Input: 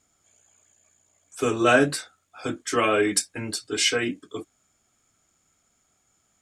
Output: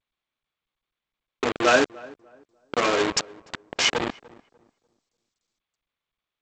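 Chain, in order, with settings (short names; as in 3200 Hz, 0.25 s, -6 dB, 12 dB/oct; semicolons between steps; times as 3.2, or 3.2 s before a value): level-crossing sampler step -17 dBFS; HPF 440 Hz 6 dB/oct; darkening echo 0.296 s, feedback 29%, low-pass 1300 Hz, level -21 dB; gain +2.5 dB; G.722 64 kbps 16000 Hz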